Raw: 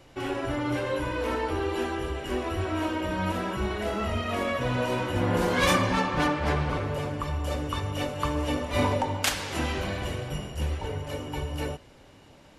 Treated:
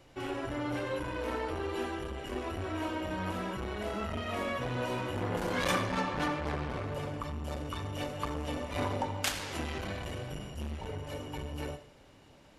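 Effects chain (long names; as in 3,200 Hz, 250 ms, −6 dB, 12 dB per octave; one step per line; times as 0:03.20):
on a send at −13 dB: convolution reverb RT60 0.45 s, pre-delay 35 ms
on the sum: saturating transformer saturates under 860 Hz
level −5 dB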